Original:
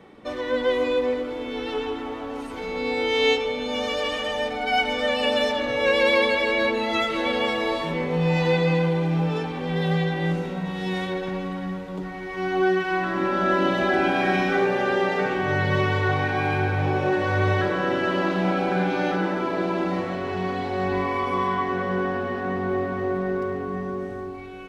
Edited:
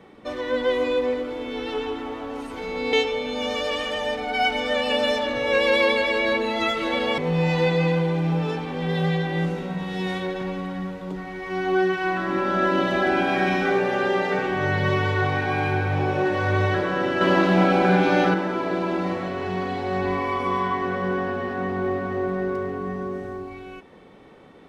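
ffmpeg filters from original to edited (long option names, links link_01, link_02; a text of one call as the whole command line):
ffmpeg -i in.wav -filter_complex "[0:a]asplit=5[link_01][link_02][link_03][link_04][link_05];[link_01]atrim=end=2.932[link_06];[link_02]atrim=start=3.258:end=7.512[link_07];[link_03]atrim=start=8.048:end=18.082[link_08];[link_04]atrim=start=18.078:end=19.212,asetpts=PTS-STARTPTS,volume=5dB[link_09];[link_05]atrim=start=19.208[link_10];[link_06][link_07]acrossfade=duration=0.004:curve1=hsin:curve2=hsin[link_11];[link_11][link_08]acrossfade=duration=0.004:curve1=hsin:curve2=hsin[link_12];[link_12][link_09]acrossfade=duration=0.004:curve1=hsin:curve2=hsin[link_13];[link_13][link_10]acrossfade=duration=0.004:curve1=hsin:curve2=hsin" out.wav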